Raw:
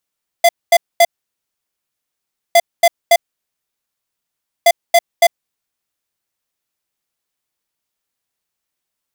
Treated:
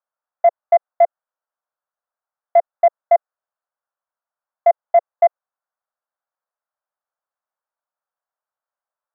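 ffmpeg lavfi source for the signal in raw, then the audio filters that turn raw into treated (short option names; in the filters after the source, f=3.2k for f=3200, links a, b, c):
-f lavfi -i "aevalsrc='0.398*(2*lt(mod(684*t,1),0.5)-1)*clip(min(mod(mod(t,2.11),0.28),0.05-mod(mod(t,2.11),0.28))/0.005,0,1)*lt(mod(t,2.11),0.84)':d=6.33:s=44100"
-af "asuperpass=centerf=910:order=8:qfactor=0.89"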